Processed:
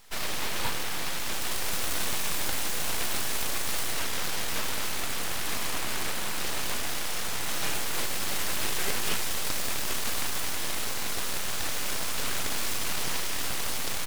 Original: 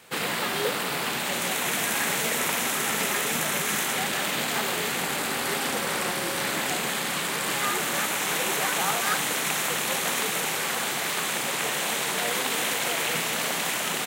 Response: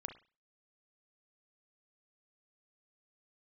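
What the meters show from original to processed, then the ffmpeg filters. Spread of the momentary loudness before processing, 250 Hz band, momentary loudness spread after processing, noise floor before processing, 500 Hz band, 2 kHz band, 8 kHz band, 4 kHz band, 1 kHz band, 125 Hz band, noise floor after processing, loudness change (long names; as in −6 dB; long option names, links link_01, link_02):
2 LU, −7.0 dB, 2 LU, −29 dBFS, −8.5 dB, −7.5 dB, −4.0 dB, −4.0 dB, −7.5 dB, −2.0 dB, −28 dBFS, −5.0 dB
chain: -filter_complex "[0:a]aeval=exprs='abs(val(0))':channel_layout=same,asplit=2[link_01][link_02];[1:a]atrim=start_sample=2205[link_03];[link_02][link_03]afir=irnorm=-1:irlink=0,volume=-0.5dB[link_04];[link_01][link_04]amix=inputs=2:normalize=0,volume=-5dB"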